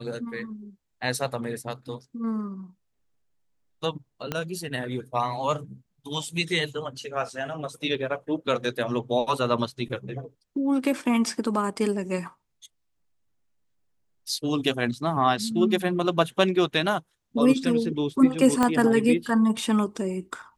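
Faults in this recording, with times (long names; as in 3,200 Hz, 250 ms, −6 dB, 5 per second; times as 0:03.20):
0:04.32: click −13 dBFS
0:18.63: click −9 dBFS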